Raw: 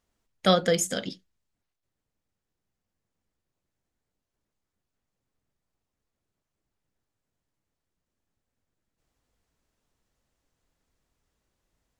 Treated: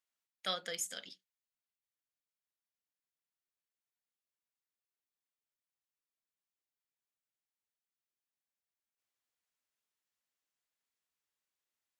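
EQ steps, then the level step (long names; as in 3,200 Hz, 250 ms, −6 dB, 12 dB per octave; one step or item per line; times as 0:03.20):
bass and treble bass +3 dB, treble −12 dB
first difference
+1.0 dB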